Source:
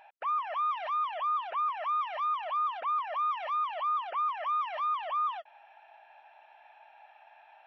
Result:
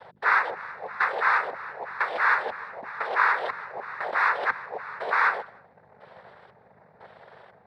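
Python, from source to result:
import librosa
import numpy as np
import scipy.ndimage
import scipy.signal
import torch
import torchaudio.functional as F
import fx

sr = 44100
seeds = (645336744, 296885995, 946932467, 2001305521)

y = fx.rider(x, sr, range_db=10, speed_s=0.5)
y = fx.filter_lfo_lowpass(y, sr, shape='square', hz=1.0, low_hz=510.0, high_hz=1500.0, q=1.2)
y = fx.add_hum(y, sr, base_hz=50, snr_db=29)
y = fx.noise_vocoder(y, sr, seeds[0], bands=6)
y = fx.echo_feedback(y, sr, ms=155, feedback_pct=30, wet_db=-23.0)
y = F.gain(torch.from_numpy(y), 6.0).numpy()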